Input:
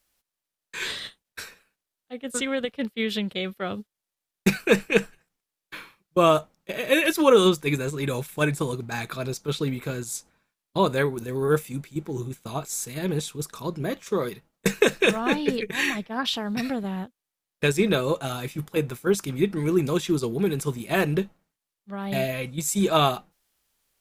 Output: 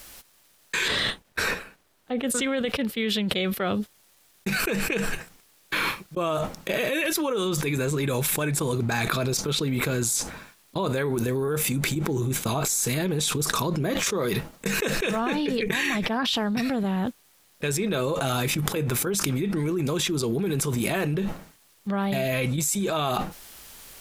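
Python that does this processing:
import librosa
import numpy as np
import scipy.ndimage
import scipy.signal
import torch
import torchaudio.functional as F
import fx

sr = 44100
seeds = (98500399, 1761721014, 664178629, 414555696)

y = fx.high_shelf(x, sr, hz=2600.0, db=-10.5, at=(0.88, 2.23))
y = fx.env_flatten(y, sr, amount_pct=100)
y = y * librosa.db_to_amplitude(-13.0)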